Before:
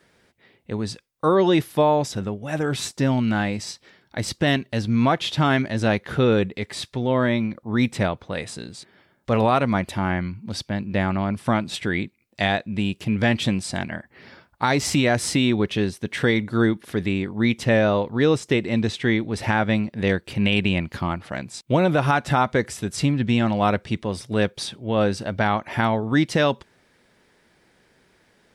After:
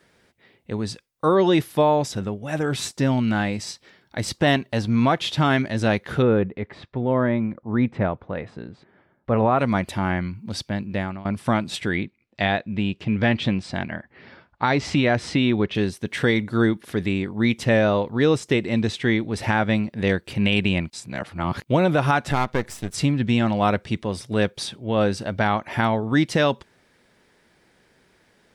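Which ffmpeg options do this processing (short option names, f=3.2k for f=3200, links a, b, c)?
-filter_complex "[0:a]asettb=1/sr,asplit=3[a][b][c];[a]atrim=end=4.344[d];[b]atrim=start=4.34:end=5,asetpts=PTS-STARTPTS,afade=t=in:d=0.004:c=qsin,afade=t=out:st=0.656:d=0.004:c=qsin,equalizer=f=850:w=1.2:g=6[e];[c]atrim=start=4.996[f];[d][e]acrossfade=d=0.004:c1=hsin:c2=qsin[g];[g][f]acrossfade=d=0.004:c1=qsin:c2=hsin,asettb=1/sr,asplit=3[h][i][j];[h]atrim=end=6.224[k];[i]atrim=start=6.22:end=9.59,asetpts=PTS-STARTPTS,afade=t=in:d=0.004:c=qsin,afade=t=out:st=3.366:d=0.004:c=qsin,lowpass=1.6k[l];[j]atrim=start=9.586[m];[k][l]acrossfade=d=0.004:c1=hsin:c2=qsin[n];[n][m]acrossfade=d=0.004:c1=qsin:c2=hsin,asettb=1/sr,asplit=3[o][p][q];[o]atrim=end=11.964[r];[p]atrim=start=11.96:end=15.75,asetpts=PTS-STARTPTS,afade=t=in:d=0.004:c=qsin,afade=t=out:st=3.786:d=0.004:c=qsin,lowpass=3.8k[s];[q]atrim=start=15.746[t];[r][s]acrossfade=d=0.004:c1=hsin:c2=qsin[u];[u][t]acrossfade=d=0.004:c1=qsin:c2=hsin,asettb=1/sr,asplit=3[v][w][x];[v]atrim=end=22.314[y];[w]atrim=start=22.31:end=22.94,asetpts=PTS-STARTPTS,afade=t=in:d=0.004:c=qsin,afade=t=out:st=0.626:d=0.004:c=qsin,aeval=exprs='if(lt(val(0),0),0.251*val(0),val(0))':c=same[z];[x]atrim=start=22.936[aa];[y][z]acrossfade=d=0.004:c1=hsin:c2=qsin[ab];[ab][aa]acrossfade=d=0.004:c1=qsin:c2=hsin,asplit=4[ac][ad][ae][af];[ac]atrim=end=11.25,asetpts=PTS-STARTPTS,afade=t=out:st=10.64:d=0.61:c=qsin:silence=0.11885[ag];[ad]atrim=start=11.25:end=20.902,asetpts=PTS-STARTPTS,afade=t=in:d=0.004:c=hsin:silence=0.11885[ah];[ae]atrim=start=20.898:end=21.642,asetpts=PTS-STARTPTS,areverse[ai];[af]atrim=start=21.638[aj];[ag][ah]concat=n=2:v=0:a=1[ak];[ak][ai]acrossfade=d=0.004:c1=hsin:c2=hsin[al];[al][aj]acrossfade=d=0.004:c1=hsin:c2=hsin"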